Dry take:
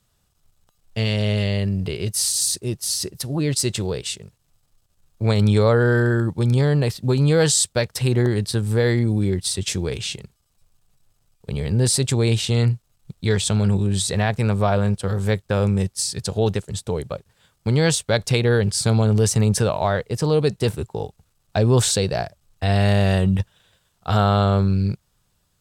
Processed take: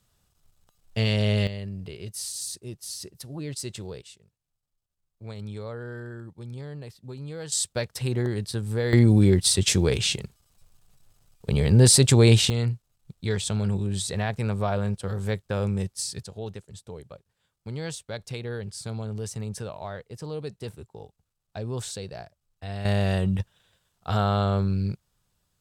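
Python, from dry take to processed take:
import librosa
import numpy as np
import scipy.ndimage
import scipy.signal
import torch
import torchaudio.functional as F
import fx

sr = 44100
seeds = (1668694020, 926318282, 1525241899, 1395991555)

y = fx.gain(x, sr, db=fx.steps((0.0, -2.0), (1.47, -12.5), (4.02, -20.0), (7.52, -7.5), (8.93, 3.0), (12.5, -7.0), (16.23, -15.5), (22.85, -6.0)))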